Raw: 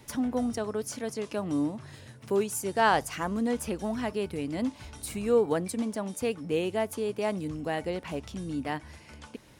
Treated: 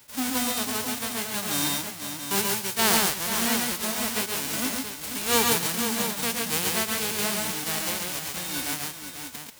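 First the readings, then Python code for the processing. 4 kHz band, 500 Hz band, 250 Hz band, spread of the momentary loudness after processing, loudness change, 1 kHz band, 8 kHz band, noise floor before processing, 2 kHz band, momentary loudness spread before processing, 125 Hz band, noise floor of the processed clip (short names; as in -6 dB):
+15.0 dB, -4.5 dB, -1.0 dB, 9 LU, +5.5 dB, +1.5 dB, +15.0 dB, -52 dBFS, +7.0 dB, 12 LU, -0.5 dB, -40 dBFS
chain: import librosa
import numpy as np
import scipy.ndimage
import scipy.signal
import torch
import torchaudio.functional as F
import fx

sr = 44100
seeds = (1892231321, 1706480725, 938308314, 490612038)

y = fx.envelope_flatten(x, sr, power=0.1)
y = fx.echo_multitap(y, sr, ms=(115, 137, 263, 489, 678), db=(-6.5, -3.0, -19.5, -8.5, -8.5))
y = fx.attack_slew(y, sr, db_per_s=350.0)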